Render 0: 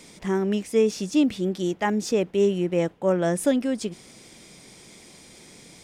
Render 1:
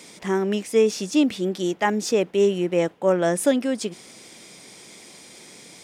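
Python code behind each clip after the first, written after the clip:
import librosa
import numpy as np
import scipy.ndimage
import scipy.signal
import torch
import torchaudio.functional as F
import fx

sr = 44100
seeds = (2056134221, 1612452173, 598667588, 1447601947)

y = fx.highpass(x, sr, hz=290.0, slope=6)
y = y * librosa.db_to_amplitude(4.0)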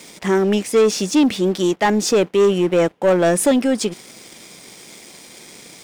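y = fx.leveller(x, sr, passes=2)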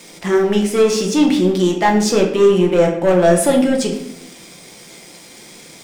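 y = fx.room_shoebox(x, sr, seeds[0], volume_m3=190.0, walls='mixed', distance_m=0.84)
y = y * librosa.db_to_amplitude(-1.0)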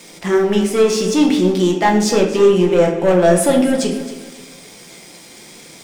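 y = fx.echo_feedback(x, sr, ms=267, feedback_pct=38, wet_db=-15.0)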